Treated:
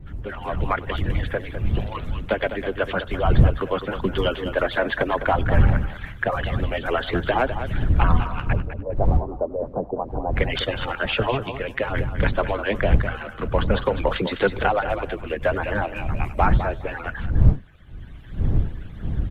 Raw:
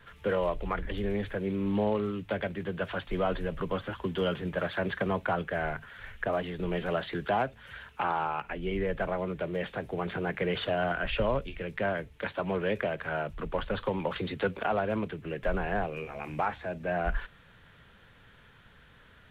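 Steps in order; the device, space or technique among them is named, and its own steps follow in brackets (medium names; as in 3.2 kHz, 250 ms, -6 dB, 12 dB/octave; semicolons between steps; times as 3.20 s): harmonic-percussive separation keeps percussive; 8.53–10.34 s: steep low-pass 1 kHz 48 dB/octave; delay 94 ms -23.5 dB; feedback delay 204 ms, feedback 17%, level -10 dB; smartphone video outdoors (wind noise 87 Hz -31 dBFS; level rider gain up to 11 dB; trim -1 dB; AAC 96 kbps 44.1 kHz)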